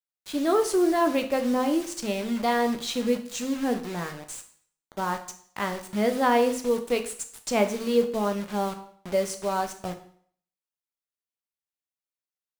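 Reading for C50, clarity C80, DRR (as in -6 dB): 11.5 dB, 15.5 dB, 6.0 dB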